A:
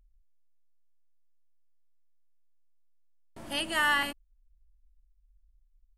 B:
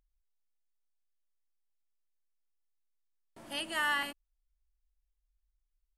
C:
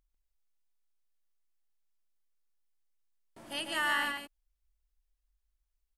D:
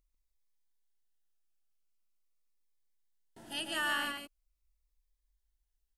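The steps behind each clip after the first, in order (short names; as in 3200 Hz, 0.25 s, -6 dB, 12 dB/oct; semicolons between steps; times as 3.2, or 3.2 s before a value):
low shelf 110 Hz -11 dB; gain -5 dB
echo 0.145 s -4.5 dB
cascading phaser falling 0.43 Hz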